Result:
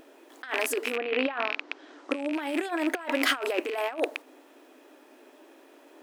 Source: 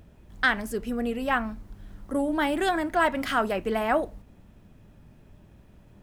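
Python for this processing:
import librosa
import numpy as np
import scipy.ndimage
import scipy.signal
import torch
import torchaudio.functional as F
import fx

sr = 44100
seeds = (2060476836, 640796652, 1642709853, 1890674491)

y = fx.rattle_buzz(x, sr, strikes_db=-36.0, level_db=-22.0)
y = fx.lowpass(y, sr, hz=fx.line((0.95, 3300.0), (2.31, 8600.0)), slope=24, at=(0.95, 2.31), fade=0.02)
y = fx.over_compress(y, sr, threshold_db=-30.0, ratio=-0.5)
y = fx.brickwall_highpass(y, sr, low_hz=260.0)
y = F.gain(torch.from_numpy(y), 4.0).numpy()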